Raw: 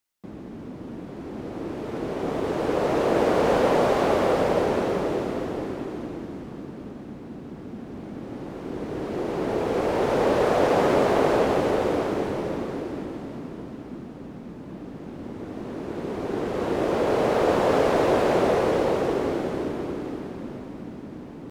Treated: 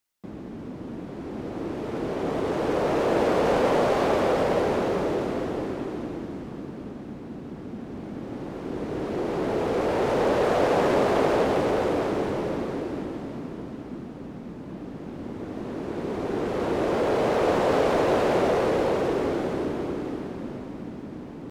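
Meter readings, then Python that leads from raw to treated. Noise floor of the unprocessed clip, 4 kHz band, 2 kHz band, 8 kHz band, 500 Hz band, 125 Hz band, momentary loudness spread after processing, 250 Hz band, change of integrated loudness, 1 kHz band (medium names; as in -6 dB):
-40 dBFS, -0.5 dB, -0.5 dB, -1.5 dB, -1.0 dB, -0.5 dB, 16 LU, -0.5 dB, -1.5 dB, -1.0 dB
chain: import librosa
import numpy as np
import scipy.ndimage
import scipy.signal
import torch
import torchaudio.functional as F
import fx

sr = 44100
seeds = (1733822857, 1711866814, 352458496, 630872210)

p1 = 10.0 ** (-24.0 / 20.0) * (np.abs((x / 10.0 ** (-24.0 / 20.0) + 3.0) % 4.0 - 2.0) - 1.0)
p2 = x + (p1 * librosa.db_to_amplitude(-10.5))
p3 = fx.doppler_dist(p2, sr, depth_ms=0.11)
y = p3 * librosa.db_to_amplitude(-1.5)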